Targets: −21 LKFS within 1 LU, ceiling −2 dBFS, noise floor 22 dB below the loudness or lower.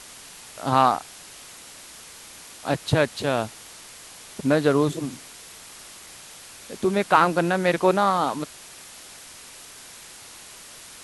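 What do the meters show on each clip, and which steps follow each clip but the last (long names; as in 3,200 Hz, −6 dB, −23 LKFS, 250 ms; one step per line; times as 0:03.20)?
background noise floor −44 dBFS; target noise floor −45 dBFS; integrated loudness −22.5 LKFS; sample peak −3.5 dBFS; target loudness −21.0 LKFS
→ broadband denoise 6 dB, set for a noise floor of −44 dBFS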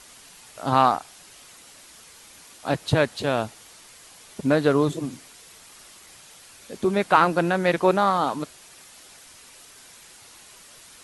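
background noise floor −49 dBFS; integrated loudness −23.0 LKFS; sample peak −3.0 dBFS; target loudness −21.0 LKFS
→ level +2 dB
brickwall limiter −2 dBFS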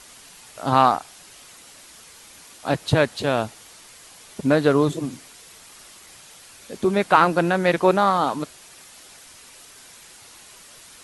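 integrated loudness −21.0 LKFS; sample peak −2.0 dBFS; background noise floor −47 dBFS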